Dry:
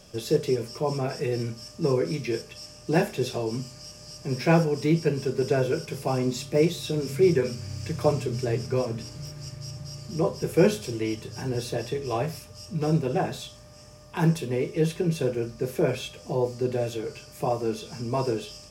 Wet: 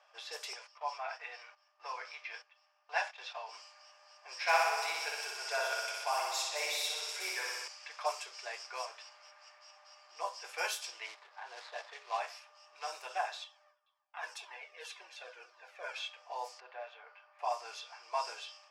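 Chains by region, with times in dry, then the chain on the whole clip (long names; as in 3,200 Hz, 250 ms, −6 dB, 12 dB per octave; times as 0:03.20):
0:00.53–0:03.49: noise gate −38 dBFS, range −11 dB + linear-phase brick-wall low-pass 11,000 Hz + three-way crossover with the lows and the highs turned down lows −23 dB, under 440 Hz, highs −14 dB, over 6,800 Hz
0:04.35–0:07.68: double-tracking delay 16 ms −13.5 dB + flutter between parallel walls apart 10.5 metres, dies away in 1.4 s
0:11.06–0:12.20: running median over 15 samples + low-pass filter 10,000 Hz + high-shelf EQ 4,000 Hz +5 dB
0:13.44–0:15.96: noise gate with hold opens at −36 dBFS, closes at −45 dBFS + echo through a band-pass that steps 105 ms, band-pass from 190 Hz, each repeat 1.4 octaves, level −9 dB + flanger whose copies keep moving one way falling 1.9 Hz
0:16.60–0:17.39: band-pass filter 520–3,700 Hz + high-shelf EQ 2,600 Hz −11 dB
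whole clip: low-pass that shuts in the quiet parts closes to 1,700 Hz, open at −18.5 dBFS; Butterworth high-pass 750 Hz 36 dB per octave; level −2 dB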